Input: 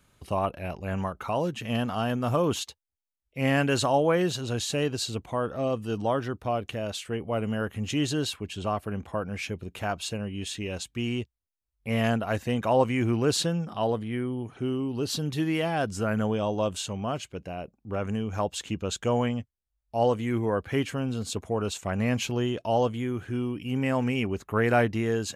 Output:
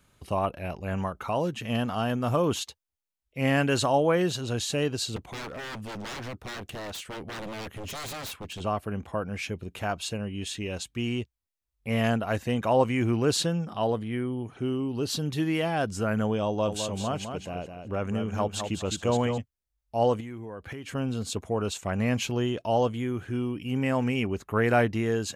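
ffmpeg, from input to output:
-filter_complex "[0:a]asettb=1/sr,asplit=3[a][b][c];[a]atrim=end=5.164[d];[b]atrim=start=5.16:end=8.61,asetpts=PTS-STARTPTS,afade=t=in:d=0.004:c=qsin,afade=t=out:st=3.446:d=0.004:c=qsin,aeval=exprs='0.0251*(abs(mod(val(0)/0.0251+3,4)-2)-1)':c=same[e];[c]atrim=start=8.606[f];[d][e]acrossfade=d=0.004:c1=hsin:c2=qsin[g];[g][f]acrossfade=d=0.004:c1=qsin:c2=hsin,asettb=1/sr,asplit=3[h][i][j];[h]atrim=end=16.474[k];[i]atrim=start=16.47:end=19.38,asetpts=PTS-STARTPTS,afade=t=in:d=0.004:c=qsin,afade=t=out:st=2.906:d=0.004:c=qsin,aecho=1:1:209|418|627:0.447|0.125|0.035,atrim=end_sample=128331[l];[j]atrim=start=19.376[m];[k][l]acrossfade=d=0.004:c1=hsin:c2=qsin[n];[n][m]acrossfade=d=0.004:c1=qsin:c2=hsin,asettb=1/sr,asplit=3[o][p][q];[o]atrim=end=20.204[r];[p]atrim=start=20.2:end=20.95,asetpts=PTS-STARTPTS,afade=t=in:d=0.004:c=qsin,afade=t=out:st=0.746:d=0.004:c=qsin,acompressor=threshold=-34dB:ratio=16:attack=3.2:release=140:knee=1:detection=peak[s];[q]atrim=start=20.946[t];[r][s]acrossfade=d=0.004:c1=hsin:c2=qsin[u];[u][t]acrossfade=d=0.004:c1=qsin:c2=hsin"

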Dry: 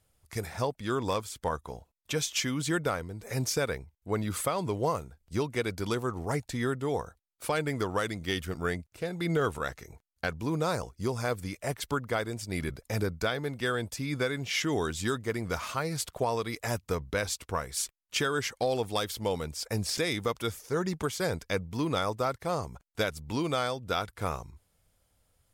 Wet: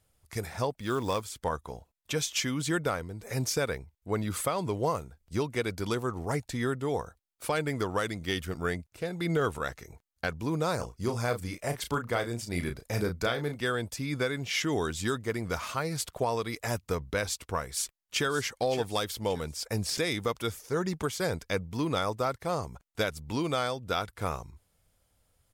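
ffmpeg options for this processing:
-filter_complex "[0:a]asettb=1/sr,asplit=3[a][b][c];[a]atrim=end=0.794[d];[b]atrim=start=0.79:end=1.22,asetpts=PTS-STARTPTS,afade=t=in:d=0.004:c=qsin,afade=t=out:st=0.426:d=0.004:c=qsin,acrusher=bits=6:mode=log:mix=0:aa=0.000001[e];[c]atrim=start=1.216[f];[d][e]acrossfade=d=0.004:c1=hsin:c2=qsin[g];[g][f]acrossfade=d=0.004:c1=qsin:c2=hsin,asplit=3[h][i][j];[h]afade=t=out:st=10.78:d=0.02[k];[i]asplit=2[l][m];[m]adelay=34,volume=-7.5dB[n];[l][n]amix=inputs=2:normalize=0,afade=t=in:st=10.78:d=0.02,afade=t=out:st=13.55:d=0.02[o];[j]afade=t=in:st=13.55:d=0.02[p];[k][o][p]amix=inputs=3:normalize=0,asplit=2[q][r];[r]afade=t=in:st=17.67:d=0.01,afade=t=out:st=18.26:d=0.01,aecho=0:1:570|1140|1710|2280:0.237137|0.0829981|0.0290493|0.0101673[s];[q][s]amix=inputs=2:normalize=0"

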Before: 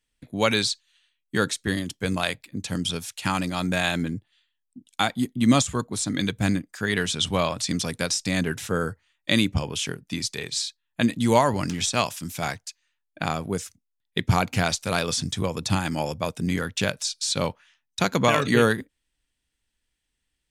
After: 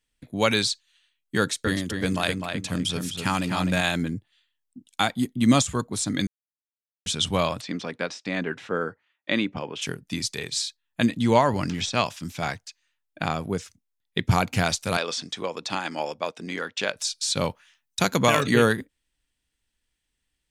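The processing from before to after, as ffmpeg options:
-filter_complex "[0:a]asettb=1/sr,asplit=3[a][b][c];[a]atrim=end=1.394[d];[b]atrim=start=1.39:end=3.81,asetpts=PTS-STARTPTS,afade=t=in:d=0.004:c=qsin,afade=t=out:st=2.416:d=0.004:c=qsin,asplit=2[e][f];[f]adelay=254,lowpass=f=3.3k:p=1,volume=-5dB,asplit=2[g][h];[h]adelay=254,lowpass=f=3.3k:p=1,volume=0.28,asplit=2[i][j];[j]adelay=254,lowpass=f=3.3k:p=1,volume=0.28,asplit=2[k][l];[l]adelay=254,lowpass=f=3.3k:p=1,volume=0.28[m];[e][g][i][k][m]amix=inputs=5:normalize=0,atrim=end_sample=106722[n];[c]atrim=start=3.806[o];[d][n]acrossfade=d=0.004:c1=hsin:c2=qsin[p];[p][o]acrossfade=d=0.004:c1=qsin:c2=hsin,asplit=3[q][r][s];[q]afade=t=out:st=7.6:d=0.02[t];[r]highpass=250,lowpass=2.6k,afade=t=in:st=7.6:d=0.02,afade=t=out:st=9.81:d=0.02[u];[s]afade=t=in:st=9.81:d=0.02[v];[t][u][v]amix=inputs=3:normalize=0,asettb=1/sr,asplit=3[w][x][y];[w]atrim=end=11.074[z];[x]atrim=start=11.07:end=14.31,asetpts=PTS-STARTPTS,afade=t=in:d=0.004:c=qsin,afade=t=out:st=3.236:d=0.004:c=qsin,acrossover=split=5900[aa][ab];[ab]acompressor=threshold=-51dB:ratio=4:attack=1:release=60[ac];[aa][ac]amix=inputs=2:normalize=0[ad];[y]atrim=start=14.306[ae];[z][ad]acrossfade=d=0.004:c1=hsin:c2=qsin[af];[af][ae]acrossfade=d=0.004:c1=qsin:c2=hsin,asettb=1/sr,asplit=3[ag][ah][ai];[ag]atrim=end=14.974[aj];[ah]atrim=start=14.97:end=16.96,asetpts=PTS-STARTPTS,afade=t=in:d=0.004:c=qsin,afade=t=out:st=1.986:d=0.004:c=qsin,highpass=370,lowpass=5.1k[ak];[ai]atrim=start=16.956[al];[aj][ak]acrossfade=d=0.004:c1=hsin:c2=qsin[am];[am][al]acrossfade=d=0.004:c1=qsin:c2=hsin,asettb=1/sr,asplit=3[an][ao][ap];[an]atrim=end=17.494[aq];[ao]atrim=start=17.49:end=18.45,asetpts=PTS-STARTPTS,afade=t=in:d=0.004:c=qsin,afade=t=out:st=0.956:d=0.004:c=qsin,highshelf=f=6.7k:g=7.5[ar];[ap]atrim=start=18.446[as];[aq][ar]acrossfade=d=0.004:c1=hsin:c2=qsin[at];[at][as]acrossfade=d=0.004:c1=qsin:c2=hsin,asplit=3[au][av][aw];[au]atrim=end=6.27,asetpts=PTS-STARTPTS,afade=t=out:st=6.266:d=0.004:c=hsin[ax];[av]atrim=start=6.27:end=7.06,asetpts=PTS-STARTPTS,volume=0[ay];[aw]atrim=start=7.06,asetpts=PTS-STARTPTS,afade=t=in:d=0.004:c=hsin[az];[ax][ay][az]concat=n=3:v=0:a=1"

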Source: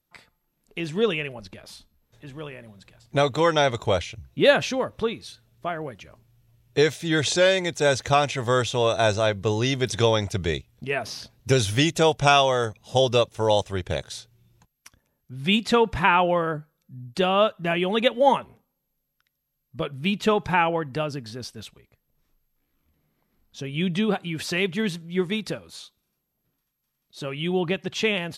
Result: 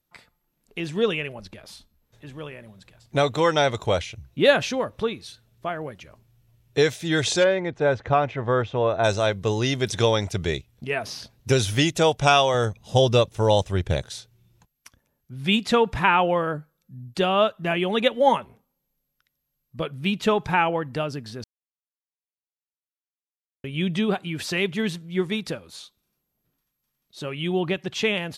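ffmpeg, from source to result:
-filter_complex "[0:a]asplit=3[a][b][c];[a]afade=t=out:st=7.43:d=0.02[d];[b]lowpass=1.7k,afade=t=in:st=7.43:d=0.02,afade=t=out:st=9.03:d=0.02[e];[c]afade=t=in:st=9.03:d=0.02[f];[d][e][f]amix=inputs=3:normalize=0,asettb=1/sr,asplit=3[g][h][i];[g]atrim=end=12.544[j];[h]atrim=start=12.54:end=14.07,asetpts=PTS-STARTPTS,afade=t=in:d=0.004:c=qsin,afade=t=out:st=1.526:d=0.004:c=qsin,lowshelf=f=220:g=8[k];[i]atrim=start=14.066[l];[j][k]acrossfade=d=0.004:c1=hsin:c2=qsin[m];[m][l]acrossfade=d=0.004:c1=qsin:c2=hsin,asplit=3[n][o][p];[n]atrim=end=21.44,asetpts=PTS-STARTPTS,afade=t=out:st=21.436:d=0.004:c=hsin[q];[o]atrim=start=21.44:end=23.64,asetpts=PTS-STARTPTS,volume=0[r];[p]atrim=start=23.64,asetpts=PTS-STARTPTS,afade=t=in:d=0.004:c=hsin[s];[q][r][s]concat=n=3:v=0:a=1"

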